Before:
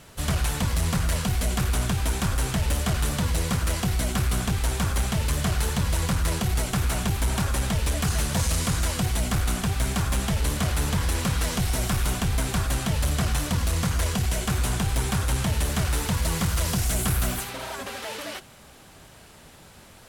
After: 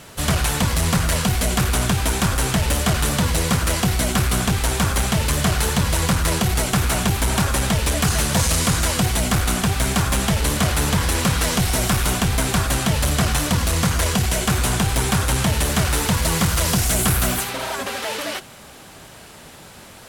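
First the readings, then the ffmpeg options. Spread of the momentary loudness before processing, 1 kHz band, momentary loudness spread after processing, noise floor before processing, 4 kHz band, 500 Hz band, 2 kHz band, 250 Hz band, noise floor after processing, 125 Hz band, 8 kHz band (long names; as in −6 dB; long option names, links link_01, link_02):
1 LU, +8.0 dB, 2 LU, −49 dBFS, +8.0 dB, +8.0 dB, +8.0 dB, +6.5 dB, −42 dBFS, +4.5 dB, +8.0 dB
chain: -af "lowshelf=frequency=87:gain=-8,volume=8dB"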